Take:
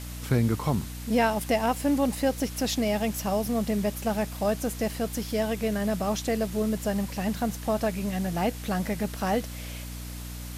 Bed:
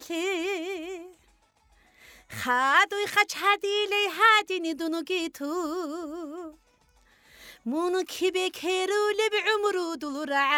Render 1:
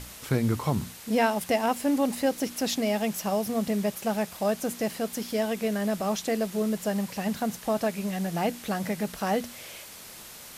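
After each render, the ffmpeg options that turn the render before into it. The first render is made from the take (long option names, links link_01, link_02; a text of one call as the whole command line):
ffmpeg -i in.wav -af "bandreject=frequency=60:width_type=h:width=6,bandreject=frequency=120:width_type=h:width=6,bandreject=frequency=180:width_type=h:width=6,bandreject=frequency=240:width_type=h:width=6,bandreject=frequency=300:width_type=h:width=6" out.wav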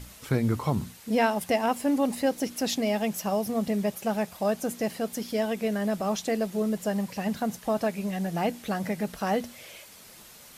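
ffmpeg -i in.wav -af "afftdn=noise_reduction=6:noise_floor=-45" out.wav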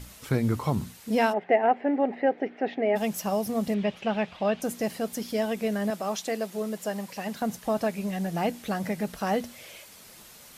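ffmpeg -i in.wav -filter_complex "[0:a]asplit=3[link_01][link_02][link_03];[link_01]afade=type=out:start_time=1.32:duration=0.02[link_04];[link_02]highpass=280,equalizer=frequency=400:width_type=q:width=4:gain=9,equalizer=frequency=740:width_type=q:width=4:gain=8,equalizer=frequency=1100:width_type=q:width=4:gain=-9,equalizer=frequency=1900:width_type=q:width=4:gain=6,lowpass=frequency=2300:width=0.5412,lowpass=frequency=2300:width=1.3066,afade=type=in:start_time=1.32:duration=0.02,afade=type=out:start_time=2.95:duration=0.02[link_05];[link_03]afade=type=in:start_time=2.95:duration=0.02[link_06];[link_04][link_05][link_06]amix=inputs=3:normalize=0,asettb=1/sr,asplit=3[link_07][link_08][link_09];[link_07]atrim=end=3.744[link_10];[link_08]atrim=start=3.74:end=4.62,asetpts=PTS-STARTPTS,afade=type=in:duration=0.004:curve=qsin,afade=type=out:start_time=0.876:duration=0.004:curve=qsin,lowpass=frequency=3000:width_type=q:width=2.3[link_11];[link_09]atrim=start=4.616[link_12];[link_10][link_11]acrossfade=duration=0.004:curve1=hsin:curve2=qsin[link_13];[link_13][link_12]acrossfade=duration=0.004:curve1=qsin:curve2=hsin,asettb=1/sr,asplit=3[link_14][link_15][link_16];[link_14]atrim=end=5.904[link_17];[link_15]atrim=start=5.9:end=7.42,asetpts=PTS-STARTPTS,afade=type=in:duration=0.004:curve=qsin,afade=type=out:start_time=1.516:duration=0.004:curve=qsin,highpass=frequency=370:poles=1[link_18];[link_16]atrim=start=7.416[link_19];[link_17][link_18]acrossfade=duration=0.004:curve1=hsin:curve2=qsin[link_20];[link_20][link_19]acrossfade=duration=0.004:curve1=qsin:curve2=hsin" out.wav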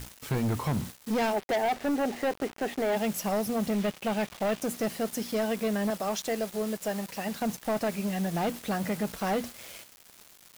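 ffmpeg -i in.wav -af "asoftclip=type=hard:threshold=-24dB,acrusher=bits=6:mix=0:aa=0.000001" out.wav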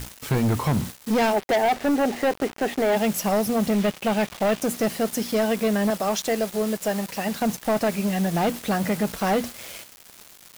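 ffmpeg -i in.wav -af "volume=6.5dB" out.wav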